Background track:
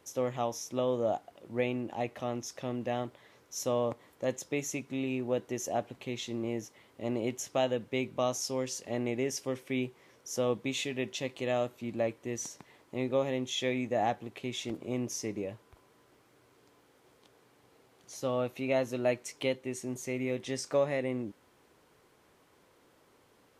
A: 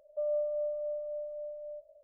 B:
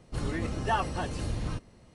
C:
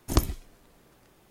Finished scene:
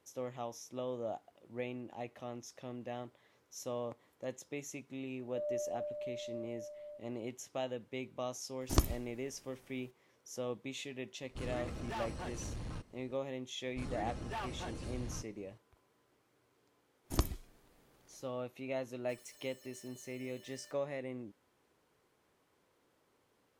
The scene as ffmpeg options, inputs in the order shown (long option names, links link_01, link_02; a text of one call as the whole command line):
ffmpeg -i bed.wav -i cue0.wav -i cue1.wav -i cue2.wav -filter_complex "[1:a]asplit=2[link_01][link_02];[3:a]asplit=2[link_03][link_04];[2:a]asplit=2[link_05][link_06];[0:a]volume=-9.5dB[link_07];[link_01]lowpass=1000[link_08];[link_05]volume=30dB,asoftclip=hard,volume=-30dB[link_09];[link_06]asoftclip=type=hard:threshold=-27dB[link_10];[link_02]aeval=exprs='(mod(133*val(0)+1,2)-1)/133':channel_layout=same[link_11];[link_08]atrim=end=2.03,asetpts=PTS-STARTPTS,volume=-6dB,afade=type=in:duration=0.004:curve=hsin,afade=type=out:start_time=2.026:duration=0.004:curve=hsin,adelay=5180[link_12];[link_03]atrim=end=1.3,asetpts=PTS-STARTPTS,volume=-6dB,afade=type=in:duration=0.004:curve=hsin,afade=type=out:start_time=1.296:duration=0.004:curve=hsin,adelay=8610[link_13];[link_09]atrim=end=1.94,asetpts=PTS-STARTPTS,volume=-8.5dB,afade=type=in:duration=0.004:curve=hsin,afade=type=out:start_time=1.936:duration=0.004:curve=hsin,adelay=11230[link_14];[link_10]atrim=end=1.94,asetpts=PTS-STARTPTS,volume=-10dB,afade=type=in:duration=0.004:curve=hsin,afade=type=out:start_time=1.936:duration=0.004:curve=hsin,adelay=601524S[link_15];[link_04]atrim=end=1.3,asetpts=PTS-STARTPTS,volume=-9dB,afade=type=in:duration=0.1,afade=type=out:start_time=1.2:duration=0.1,adelay=17020[link_16];[link_11]atrim=end=2.03,asetpts=PTS-STARTPTS,volume=-14.5dB,afade=type=in:duration=0.004:curve=hsin,afade=type=out:start_time=2.026:duration=0.004:curve=hsin,adelay=834372S[link_17];[link_07][link_12][link_13][link_14][link_15][link_16][link_17]amix=inputs=7:normalize=0" out.wav